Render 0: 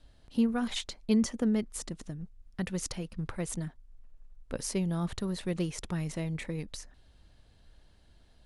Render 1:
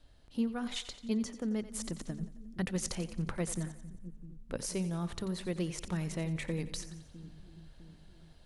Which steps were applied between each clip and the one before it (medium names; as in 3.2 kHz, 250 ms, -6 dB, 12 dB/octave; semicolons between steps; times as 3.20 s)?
hum notches 50/100/150/200/250 Hz; gain riding within 5 dB 0.5 s; two-band feedback delay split 330 Hz, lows 655 ms, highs 89 ms, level -13.5 dB; trim -3 dB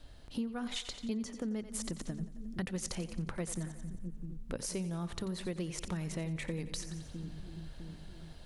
compression 3:1, threshold -45 dBFS, peak gain reduction 13 dB; trim +7.5 dB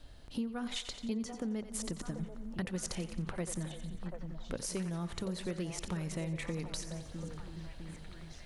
repeats whose band climbs or falls 737 ms, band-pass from 670 Hz, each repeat 0.7 oct, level -4 dB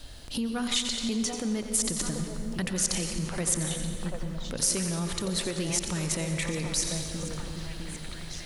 on a send at -8 dB: reverberation RT60 2.4 s, pre-delay 114 ms; on the sum: peak limiter -30 dBFS, peak gain reduction 8.5 dB; treble shelf 3 kHz +11.5 dB; trim +7.5 dB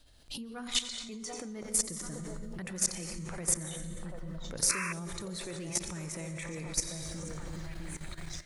level held to a coarse grid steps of 13 dB; painted sound noise, 4.69–4.93 s, 970–2700 Hz -36 dBFS; spectral noise reduction 8 dB